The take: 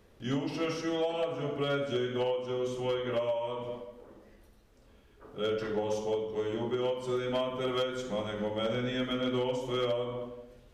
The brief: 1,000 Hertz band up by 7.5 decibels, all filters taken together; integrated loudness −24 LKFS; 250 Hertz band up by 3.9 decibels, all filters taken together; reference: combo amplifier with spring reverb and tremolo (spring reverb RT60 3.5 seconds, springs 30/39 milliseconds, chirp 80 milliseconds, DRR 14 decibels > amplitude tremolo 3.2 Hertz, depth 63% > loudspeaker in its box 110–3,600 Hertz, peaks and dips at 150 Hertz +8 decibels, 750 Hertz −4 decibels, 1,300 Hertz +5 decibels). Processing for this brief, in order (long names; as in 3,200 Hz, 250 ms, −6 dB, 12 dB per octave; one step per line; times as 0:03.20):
parametric band 250 Hz +4 dB
parametric band 1,000 Hz +8 dB
spring reverb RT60 3.5 s, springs 30/39 ms, chirp 80 ms, DRR 14 dB
amplitude tremolo 3.2 Hz, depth 63%
loudspeaker in its box 110–3,600 Hz, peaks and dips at 150 Hz +8 dB, 750 Hz −4 dB, 1,300 Hz +5 dB
level +8.5 dB